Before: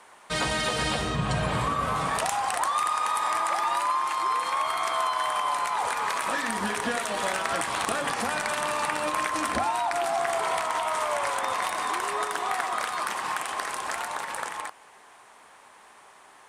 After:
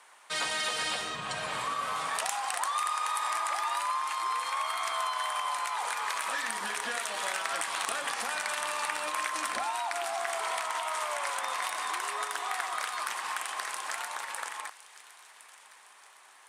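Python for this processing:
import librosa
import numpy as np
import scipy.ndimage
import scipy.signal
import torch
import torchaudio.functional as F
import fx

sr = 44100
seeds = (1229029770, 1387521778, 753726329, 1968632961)

p1 = fx.highpass(x, sr, hz=1300.0, slope=6)
p2 = p1 + fx.echo_wet_highpass(p1, sr, ms=1061, feedback_pct=45, hz=2300.0, wet_db=-15.0, dry=0)
y = p2 * librosa.db_to_amplitude(-1.5)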